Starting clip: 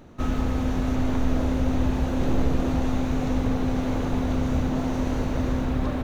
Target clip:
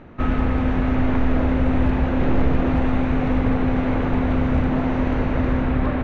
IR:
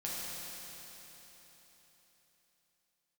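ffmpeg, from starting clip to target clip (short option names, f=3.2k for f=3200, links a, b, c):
-af "lowpass=f=2.2k:t=q:w=1.5,asoftclip=type=hard:threshold=-15dB,volume=4.5dB"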